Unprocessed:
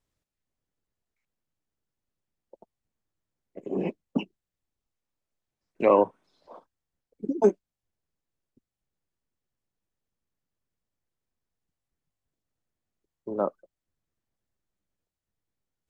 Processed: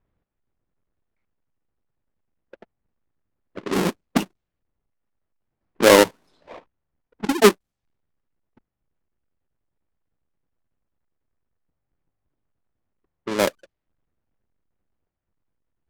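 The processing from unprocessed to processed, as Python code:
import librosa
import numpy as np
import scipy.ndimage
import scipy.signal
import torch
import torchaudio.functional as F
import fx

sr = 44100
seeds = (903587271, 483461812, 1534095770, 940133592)

y = fx.halfwave_hold(x, sr)
y = fx.env_lowpass(y, sr, base_hz=1900.0, full_db=-23.5)
y = F.gain(torch.from_numpy(y), 3.5).numpy()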